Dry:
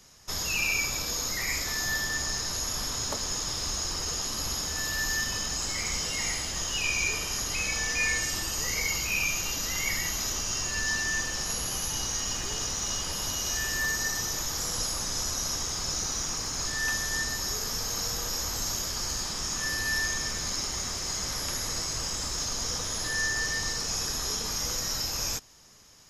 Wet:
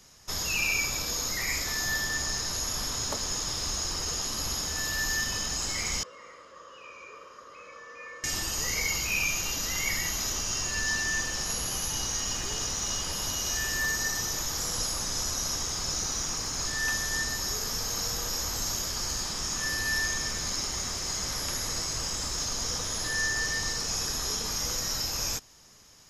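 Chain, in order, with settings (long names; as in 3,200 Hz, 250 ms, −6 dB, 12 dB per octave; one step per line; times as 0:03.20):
0:06.03–0:08.24: pair of resonant band-passes 780 Hz, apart 1.1 octaves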